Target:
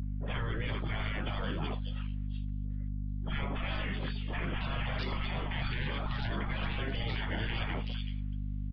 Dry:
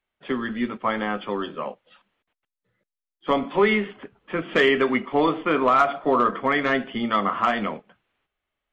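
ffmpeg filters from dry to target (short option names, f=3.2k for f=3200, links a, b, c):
-filter_complex "[0:a]afftfilt=real='re*lt(hypot(re,im),0.0708)':imag='im*lt(hypot(re,im),0.0708)':win_size=1024:overlap=0.75,lowshelf=f=190:g=11.5,acompressor=threshold=-40dB:ratio=2,aresample=11025,asoftclip=type=tanh:threshold=-18dB,aresample=44100,aeval=exprs='val(0)+0.0112*(sin(2*PI*50*n/s)+sin(2*PI*2*50*n/s)/2+sin(2*PI*3*50*n/s)/3+sin(2*PI*4*50*n/s)/4+sin(2*PI*5*50*n/s)/5)':c=same,acrossover=split=1000|3300[a][b][c];[b]adelay=50[d];[c]adelay=430[e];[a][d][e]amix=inputs=3:normalize=0,volume=5dB"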